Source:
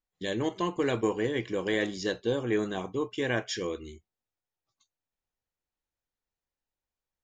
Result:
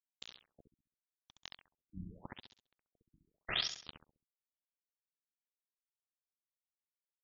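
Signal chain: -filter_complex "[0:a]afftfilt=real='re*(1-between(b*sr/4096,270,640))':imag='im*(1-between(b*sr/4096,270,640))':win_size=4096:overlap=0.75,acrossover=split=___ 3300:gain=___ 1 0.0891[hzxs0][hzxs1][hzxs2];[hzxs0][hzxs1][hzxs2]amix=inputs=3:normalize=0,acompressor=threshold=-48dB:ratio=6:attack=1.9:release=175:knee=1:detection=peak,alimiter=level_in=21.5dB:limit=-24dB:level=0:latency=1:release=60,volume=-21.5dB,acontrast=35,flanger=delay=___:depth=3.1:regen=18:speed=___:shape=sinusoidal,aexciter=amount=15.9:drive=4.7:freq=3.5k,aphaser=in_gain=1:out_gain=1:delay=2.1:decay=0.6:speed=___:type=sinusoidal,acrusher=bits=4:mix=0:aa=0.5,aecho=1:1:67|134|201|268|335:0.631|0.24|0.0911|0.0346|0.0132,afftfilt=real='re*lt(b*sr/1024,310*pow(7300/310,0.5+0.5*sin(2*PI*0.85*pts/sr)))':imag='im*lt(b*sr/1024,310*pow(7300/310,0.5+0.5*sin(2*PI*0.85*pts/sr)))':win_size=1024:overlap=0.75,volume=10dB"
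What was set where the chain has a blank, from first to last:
440, 0.251, 8.6, 0.64, 1.3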